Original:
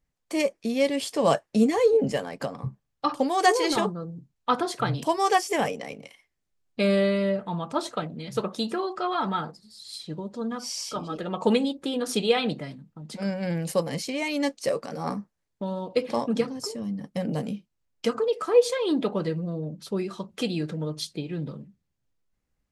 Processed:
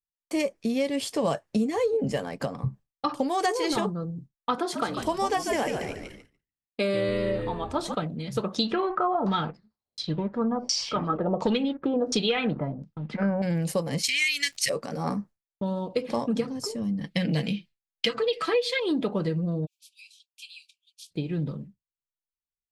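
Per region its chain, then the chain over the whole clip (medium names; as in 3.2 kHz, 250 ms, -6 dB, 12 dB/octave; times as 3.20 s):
4.58–7.95 s: high-pass 240 Hz 24 dB/octave + frequency-shifting echo 145 ms, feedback 40%, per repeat -85 Hz, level -8 dB
8.55–13.42 s: waveshaping leveller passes 1 + LFO low-pass saw down 1.4 Hz 490–5900 Hz
14.03–14.68 s: FFT filter 130 Hz 0 dB, 230 Hz -18 dB, 770 Hz -30 dB, 1.9 kHz +14 dB + crackle 140 per s -42 dBFS
17.01–18.80 s: high-order bell 2.9 kHz +14 dB + comb 6.1 ms, depth 48%
19.65–21.10 s: spectral peaks clipped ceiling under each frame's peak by 14 dB + Chebyshev high-pass 2.3 kHz, order 10 + compression 3:1, threshold -45 dBFS
whole clip: expander -43 dBFS; bass shelf 160 Hz +8 dB; compression, threshold -22 dBFS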